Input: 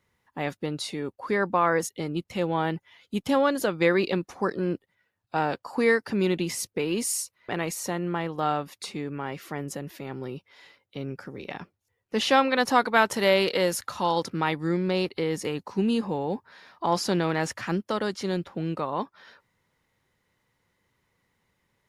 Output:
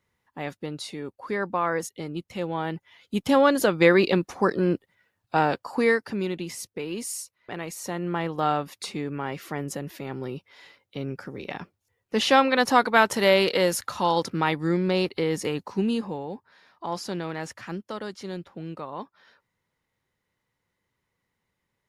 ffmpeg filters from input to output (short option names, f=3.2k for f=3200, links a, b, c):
-af "volume=11.5dB,afade=t=in:st=2.65:d=0.88:silence=0.421697,afade=t=out:st=5.35:d=0.94:silence=0.334965,afade=t=in:st=7.71:d=0.55:silence=0.446684,afade=t=out:st=15.57:d=0.75:silence=0.375837"